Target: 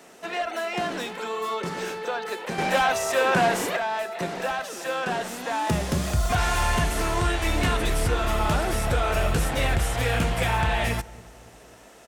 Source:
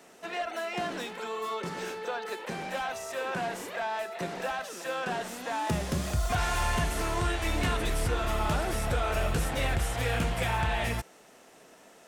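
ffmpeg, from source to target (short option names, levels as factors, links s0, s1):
-filter_complex "[0:a]asplit=2[s0][s1];[s1]adelay=276,lowpass=f=930:p=1,volume=0.112,asplit=2[s2][s3];[s3]adelay=276,lowpass=f=930:p=1,volume=0.48,asplit=2[s4][s5];[s5]adelay=276,lowpass=f=930:p=1,volume=0.48,asplit=2[s6][s7];[s7]adelay=276,lowpass=f=930:p=1,volume=0.48[s8];[s0][s2][s4][s6][s8]amix=inputs=5:normalize=0,asettb=1/sr,asplit=3[s9][s10][s11];[s9]atrim=end=2.584[s12];[s10]atrim=start=2.58:end=3.77,asetpts=PTS-STARTPTS,afade=t=in:d=0.004:c=qsin,afade=t=out:st=1.186:d=0.004:c=qsin,acontrast=78[s13];[s11]atrim=start=3.766[s14];[s12][s13]acrossfade=d=0.004:c1=hsin:c2=qsin[s15];[s15][s14]acrossfade=d=0.004:c1=qsin:c2=hsin,volume=1.78"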